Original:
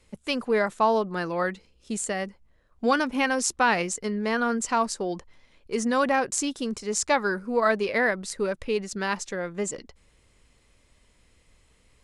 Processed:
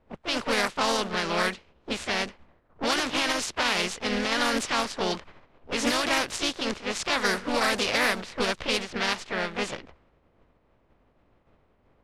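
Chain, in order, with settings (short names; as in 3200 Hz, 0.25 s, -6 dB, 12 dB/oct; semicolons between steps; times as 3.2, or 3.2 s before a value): spectral contrast lowered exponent 0.44; bell 3100 Hz +2.5 dB 1.3 oct; harmoniser +3 st -3 dB, +4 st -11 dB, +12 st -16 dB; limiter -13 dBFS, peak gain reduction 11 dB; low-pass opened by the level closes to 850 Hz, open at -19 dBFS; Doppler distortion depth 0.12 ms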